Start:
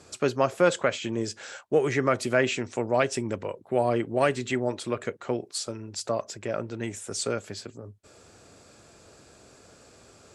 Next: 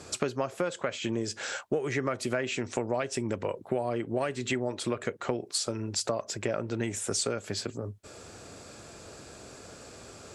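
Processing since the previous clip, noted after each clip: compression 12:1, threshold -32 dBFS, peak gain reduction 17.5 dB; trim +6 dB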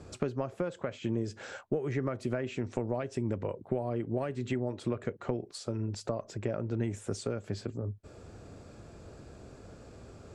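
tilt EQ -3 dB/octave; trim -6.5 dB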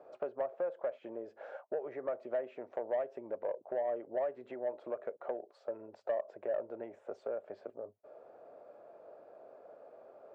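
ladder band-pass 680 Hz, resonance 60%; saturation -33.5 dBFS, distortion -19 dB; trim +8 dB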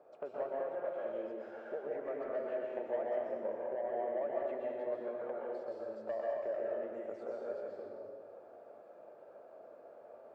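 plate-style reverb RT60 1.7 s, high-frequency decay 0.95×, pre-delay 110 ms, DRR -4.5 dB; trim -5 dB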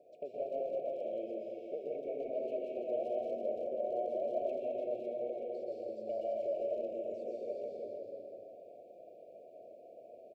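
speakerphone echo 120 ms, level -9 dB; FFT band-reject 750–2200 Hz; delay 334 ms -6.5 dB

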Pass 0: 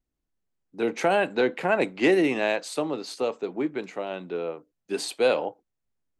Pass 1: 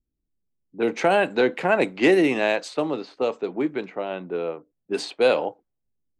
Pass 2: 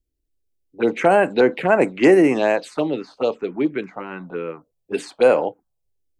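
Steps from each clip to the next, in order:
level-controlled noise filter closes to 360 Hz, open at -23 dBFS; trim +3 dB
touch-sensitive phaser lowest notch 190 Hz, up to 3.7 kHz, full sweep at -16.5 dBFS; trim +5 dB

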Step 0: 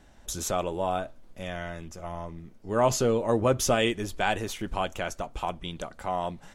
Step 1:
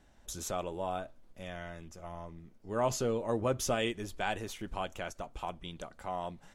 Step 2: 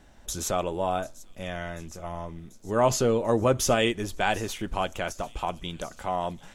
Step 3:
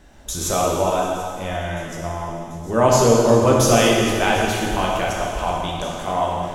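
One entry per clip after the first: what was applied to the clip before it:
endings held to a fixed fall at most 500 dB/s; trim -7.5 dB
feedback echo behind a high-pass 740 ms, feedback 71%, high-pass 4.3 kHz, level -17 dB; trim +8.5 dB
plate-style reverb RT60 2.3 s, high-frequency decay 0.9×, DRR -3 dB; trim +4 dB

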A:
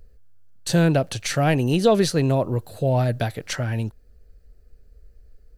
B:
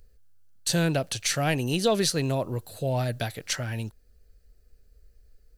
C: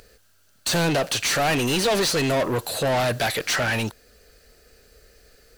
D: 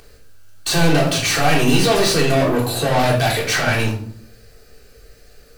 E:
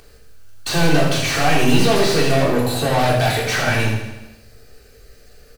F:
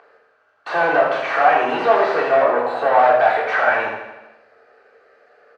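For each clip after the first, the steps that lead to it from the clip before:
treble shelf 2.1 kHz +10 dB; trim -7 dB
overdrive pedal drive 32 dB, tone 5.4 kHz, clips at -11.5 dBFS; trim -3 dB
simulated room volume 720 m³, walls furnished, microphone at 3.6 m
on a send: feedback delay 81 ms, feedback 60%, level -9 dB; on the sum: slew-rate limiter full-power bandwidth 430 Hz; trim -1 dB
Butterworth band-pass 960 Hz, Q 0.9; trim +6.5 dB

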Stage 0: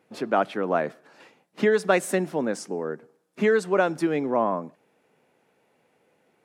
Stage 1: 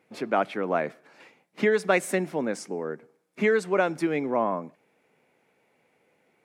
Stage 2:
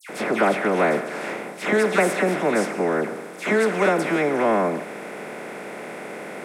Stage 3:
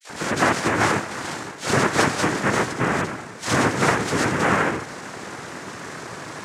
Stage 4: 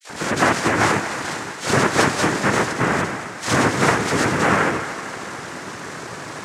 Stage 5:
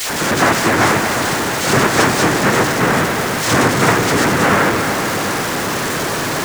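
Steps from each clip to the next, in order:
peaking EQ 2.2 kHz +7.5 dB 0.29 oct; trim -2 dB
spectral levelling over time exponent 0.4; phase dispersion lows, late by 96 ms, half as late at 2.1 kHz
noise-vocoded speech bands 3
thinning echo 226 ms, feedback 63%, high-pass 480 Hz, level -11 dB; trim +2 dB
jump at every zero crossing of -17.5 dBFS; bucket-brigade echo 364 ms, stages 2048, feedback 71%, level -9.5 dB; trim +1 dB

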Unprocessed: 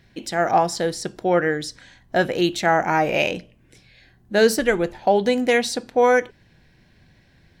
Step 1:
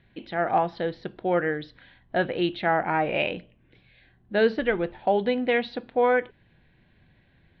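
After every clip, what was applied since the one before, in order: steep low-pass 3.8 kHz 48 dB/octave; trim -5 dB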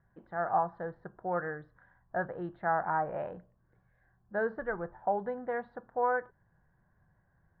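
FFT filter 180 Hz 0 dB, 260 Hz -9 dB, 1.1 kHz +7 dB, 1.7 kHz 0 dB, 2.5 kHz -29 dB; trim -8.5 dB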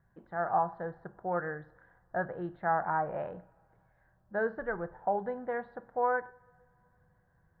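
two-slope reverb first 0.63 s, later 3.3 s, from -20 dB, DRR 16 dB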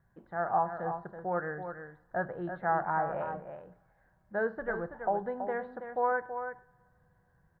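delay 329 ms -8.5 dB

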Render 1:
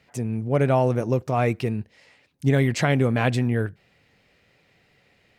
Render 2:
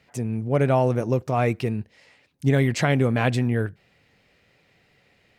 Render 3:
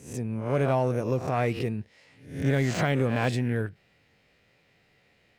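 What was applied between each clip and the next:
no audible change
reverse spectral sustain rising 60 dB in 0.50 s; in parallel at -8.5 dB: hard clipper -17 dBFS, distortion -12 dB; on the sum: de-esser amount 55%; trim -7.5 dB

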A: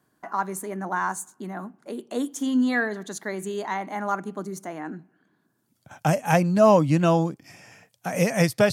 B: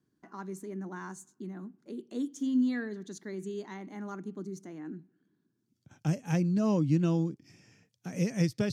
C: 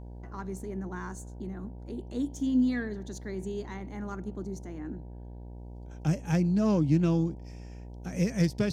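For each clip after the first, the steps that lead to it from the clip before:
FFT filter 370 Hz 0 dB, 660 Hz -16 dB, 5.9 kHz -4 dB, 9.9 kHz -15 dB; trim -5 dB
self-modulated delay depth 0.071 ms; mains buzz 60 Hz, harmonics 16, -45 dBFS -7 dB/octave; trim +2 dB

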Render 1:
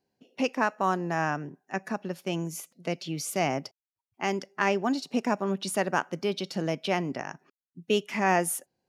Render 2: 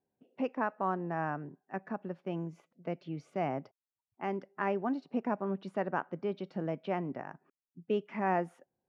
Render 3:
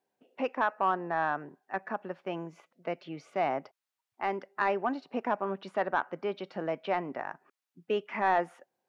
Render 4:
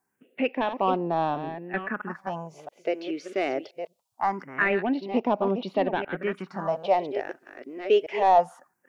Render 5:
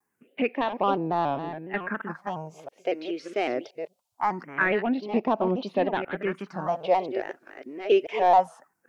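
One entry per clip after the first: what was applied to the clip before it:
low-pass 1.5 kHz 12 dB/octave; trim -5.5 dB
tilt EQ +2.5 dB/octave; overdrive pedal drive 11 dB, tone 1.5 kHz, clips at -17.5 dBFS; trim +4 dB
chunks repeated in reverse 672 ms, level -9 dB; phase shifter stages 4, 0.23 Hz, lowest notch 150–1700 Hz; trim +9 dB
vibrato with a chosen wave square 3.6 Hz, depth 100 cents

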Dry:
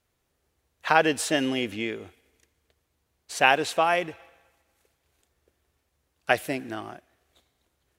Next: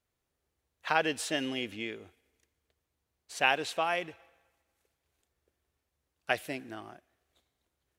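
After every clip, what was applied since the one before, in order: dynamic bell 3.3 kHz, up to +4 dB, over -38 dBFS, Q 0.83; trim -8.5 dB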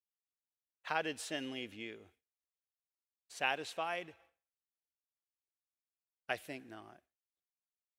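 expander -55 dBFS; trim -8 dB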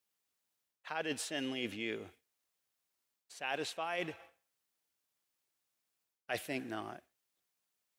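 high-pass 91 Hz; reverse; compression 12:1, threshold -45 dBFS, peak gain reduction 18 dB; reverse; trim +11 dB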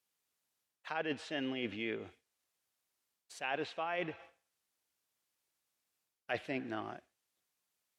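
low-pass that closes with the level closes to 2.8 kHz, closed at -35 dBFS; trim +1 dB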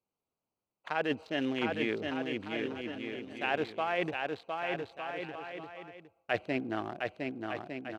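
local Wiener filter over 25 samples; bouncing-ball echo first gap 710 ms, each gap 0.7×, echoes 5; trim +6 dB

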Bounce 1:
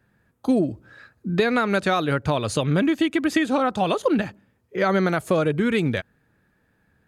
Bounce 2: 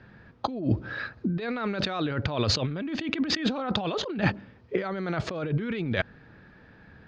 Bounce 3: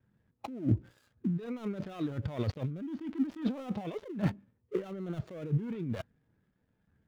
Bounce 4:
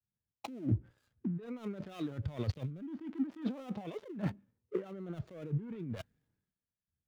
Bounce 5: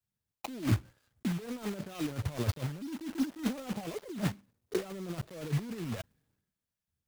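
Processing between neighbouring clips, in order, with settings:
steep low-pass 5.1 kHz 36 dB/octave; compressor with a negative ratio -32 dBFS, ratio -1; trim +3 dB
dead-time distortion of 0.27 ms; spectral contrast expander 1.5:1; trim -4 dB
compression 2:1, threshold -47 dBFS, peak gain reduction 13.5 dB; three bands expanded up and down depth 100%; trim +4 dB
block-companded coder 3-bit; trim +3 dB

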